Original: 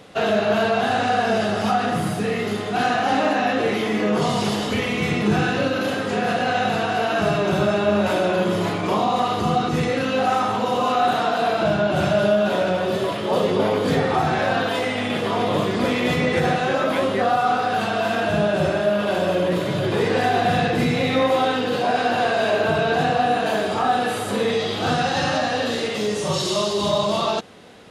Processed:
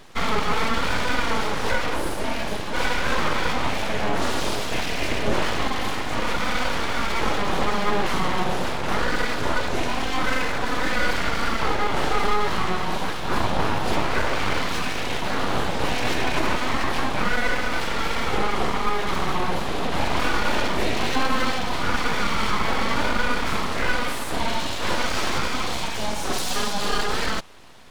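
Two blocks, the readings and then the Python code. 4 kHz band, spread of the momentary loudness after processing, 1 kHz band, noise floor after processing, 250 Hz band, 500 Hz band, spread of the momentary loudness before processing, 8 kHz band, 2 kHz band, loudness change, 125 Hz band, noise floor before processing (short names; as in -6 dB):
-0.5 dB, 3 LU, -4.0 dB, -25 dBFS, -6.5 dB, -8.5 dB, 3 LU, +2.5 dB, -0.5 dB, -4.0 dB, -5.5 dB, -25 dBFS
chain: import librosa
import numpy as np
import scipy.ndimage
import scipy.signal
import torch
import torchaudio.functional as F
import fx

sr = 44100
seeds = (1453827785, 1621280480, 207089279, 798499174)

y = np.abs(x)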